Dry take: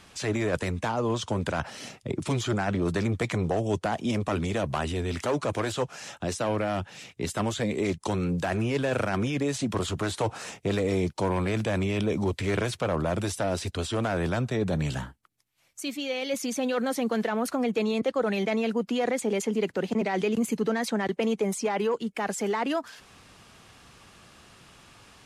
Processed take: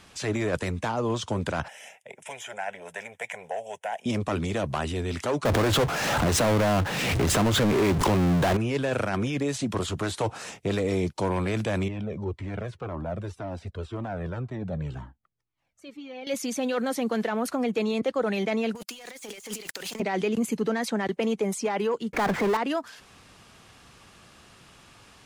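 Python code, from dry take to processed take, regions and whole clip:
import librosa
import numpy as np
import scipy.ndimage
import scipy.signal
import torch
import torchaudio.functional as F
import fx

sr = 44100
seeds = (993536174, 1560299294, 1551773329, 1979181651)

y = fx.chain(x, sr, fx.highpass(hz=590.0, slope=12),
    fx.fixed_phaser(hz=1200.0, stages=6), at=(1.68, 4.06))
y = fx.chain(y, sr, fx.lowpass(hz=1200.0, slope=6),
    fx.power_curve(exponent=0.35),
    fx.pre_swell(db_per_s=25.0), at=(5.45, 8.57))
y = fx.chain(y, sr, fx.lowpass(hz=1000.0, slope=6),
    fx.comb_cascade(direction='falling', hz=1.9), at=(11.88, 16.27))
y = fx.chain(y, sr, fx.pre_emphasis(coefficient=0.97),
    fx.leveller(passes=5),
    fx.over_compress(threshold_db=-37.0, ratio=-0.5), at=(18.75, 20.0))
y = fx.chain(y, sr, fx.lowpass(hz=1900.0, slope=24),
    fx.power_curve(exponent=0.5),
    fx.env_flatten(amount_pct=50), at=(22.13, 22.57))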